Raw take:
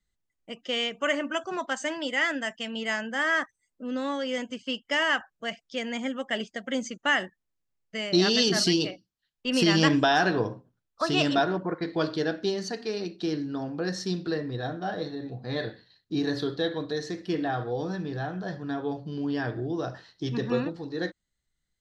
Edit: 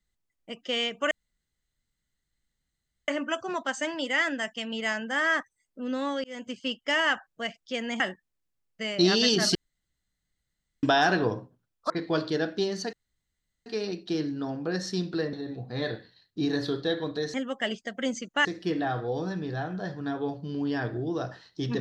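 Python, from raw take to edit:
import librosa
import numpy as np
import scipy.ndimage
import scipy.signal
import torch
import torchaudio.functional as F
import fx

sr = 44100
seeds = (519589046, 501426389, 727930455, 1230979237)

y = fx.edit(x, sr, fx.insert_room_tone(at_s=1.11, length_s=1.97),
    fx.fade_in_span(start_s=4.27, length_s=0.26),
    fx.move(start_s=6.03, length_s=1.11, to_s=17.08),
    fx.room_tone_fill(start_s=8.69, length_s=1.28),
    fx.cut(start_s=11.04, length_s=0.72),
    fx.insert_room_tone(at_s=12.79, length_s=0.73),
    fx.cut(start_s=14.46, length_s=0.61), tone=tone)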